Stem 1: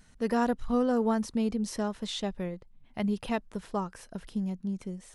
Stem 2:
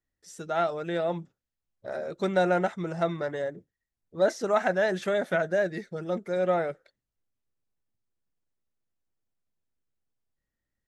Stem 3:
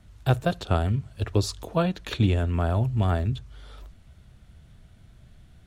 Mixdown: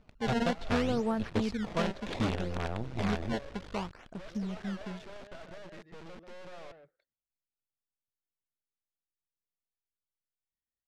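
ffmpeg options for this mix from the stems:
ffmpeg -i stem1.wav -i stem2.wav -i stem3.wav -filter_complex "[0:a]acrusher=samples=21:mix=1:aa=0.000001:lfo=1:lforange=33.6:lforate=0.65,volume=-4dB[link_01];[1:a]acompressor=threshold=-36dB:ratio=2,asoftclip=type=tanh:threshold=-35.5dB,volume=-4.5dB,asplit=2[link_02][link_03];[link_03]volume=-12dB[link_04];[2:a]aecho=1:1:4.2:0.4,volume=-4.5dB[link_05];[link_02][link_05]amix=inputs=2:normalize=0,acrusher=bits=5:dc=4:mix=0:aa=0.000001,acompressor=threshold=-35dB:ratio=1.5,volume=0dB[link_06];[link_04]aecho=0:1:137:1[link_07];[link_01][link_06][link_07]amix=inputs=3:normalize=0,lowpass=4600" out.wav

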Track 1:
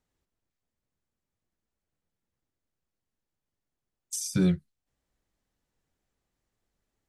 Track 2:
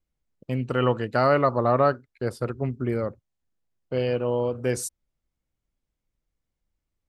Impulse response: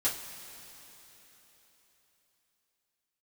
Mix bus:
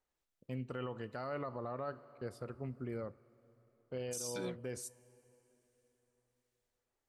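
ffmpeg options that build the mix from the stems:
-filter_complex "[0:a]highpass=440,acrossover=split=1700[link_01][link_02];[link_01]aeval=exprs='val(0)*(1-0.5/2+0.5/2*cos(2*PI*1.3*n/s))':channel_layout=same[link_03];[link_02]aeval=exprs='val(0)*(1-0.5/2-0.5/2*cos(2*PI*1.3*n/s))':channel_layout=same[link_04];[link_03][link_04]amix=inputs=2:normalize=0,volume=-1.5dB[link_05];[1:a]volume=-14.5dB,asplit=2[link_06][link_07];[link_07]volume=-21dB[link_08];[2:a]atrim=start_sample=2205[link_09];[link_08][link_09]afir=irnorm=-1:irlink=0[link_10];[link_05][link_06][link_10]amix=inputs=3:normalize=0,alimiter=level_in=7dB:limit=-24dB:level=0:latency=1:release=70,volume=-7dB"

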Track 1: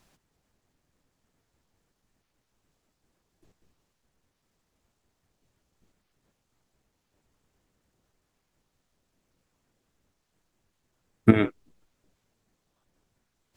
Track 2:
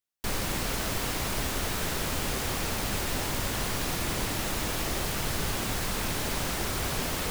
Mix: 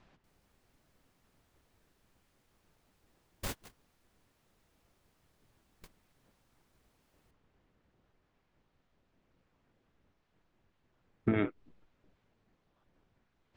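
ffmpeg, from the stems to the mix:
ffmpeg -i stem1.wav -i stem2.wav -filter_complex "[0:a]lowpass=3000,alimiter=limit=-13.5dB:level=0:latency=1:release=10,volume=1.5dB,asplit=2[link_01][link_02];[1:a]volume=-2dB[link_03];[link_02]apad=whole_len=322283[link_04];[link_03][link_04]sidechaingate=range=-43dB:threshold=-59dB:ratio=16:detection=peak[link_05];[link_01][link_05]amix=inputs=2:normalize=0,acompressor=threshold=-29dB:ratio=2.5" out.wav

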